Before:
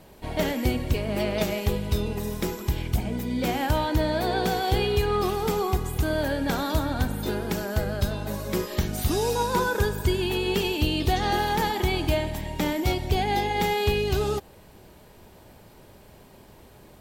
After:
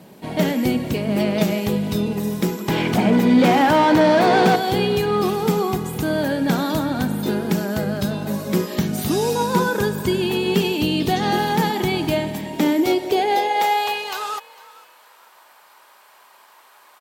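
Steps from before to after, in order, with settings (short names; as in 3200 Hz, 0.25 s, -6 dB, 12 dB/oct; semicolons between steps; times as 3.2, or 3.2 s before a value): 2.68–4.56 overdrive pedal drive 24 dB, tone 1600 Hz, clips at -11 dBFS; high-pass sweep 180 Hz -> 1100 Hz, 12.27–14.23; frequency-shifting echo 0.452 s, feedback 31%, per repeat +43 Hz, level -21 dB; gain +3.5 dB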